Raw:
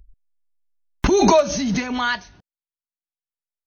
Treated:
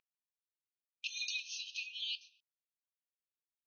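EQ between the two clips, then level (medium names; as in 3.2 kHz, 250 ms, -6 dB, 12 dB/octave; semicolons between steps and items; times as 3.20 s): brick-wall FIR high-pass 2.4 kHz; low-pass 3.4 kHz 6 dB/octave; distance through air 170 m; -1.0 dB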